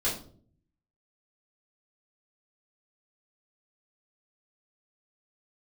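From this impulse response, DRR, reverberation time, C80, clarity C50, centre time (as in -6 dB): -8.5 dB, 0.50 s, 12.0 dB, 7.0 dB, 30 ms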